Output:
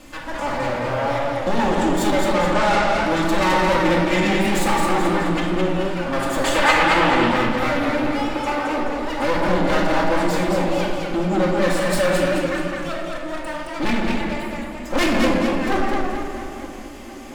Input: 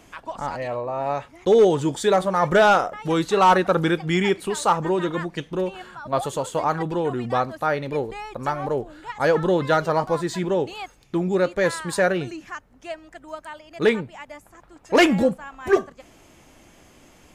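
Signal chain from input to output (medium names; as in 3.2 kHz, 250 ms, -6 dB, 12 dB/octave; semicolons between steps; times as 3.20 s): comb filter that takes the minimum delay 3.4 ms; 2.07–2.88 s: elliptic low-pass 8.7 kHz; in parallel at +2 dB: compression, threshold -34 dBFS, peak gain reduction 20 dB; 8.18–8.78 s: on the sum: steep high-pass 300 Hz 48 dB/octave; on a send: tape echo 692 ms, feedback 57%, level -18 dB; on the sum: simulated room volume 1200 m³, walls mixed, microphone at 2.1 m; saturation -13.5 dBFS, distortion -11 dB; 6.44–7.28 s: peaking EQ 2.6 kHz +13.5 dB 2.5 oct; modulated delay 215 ms, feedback 47%, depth 96 cents, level -4 dB; trim -1 dB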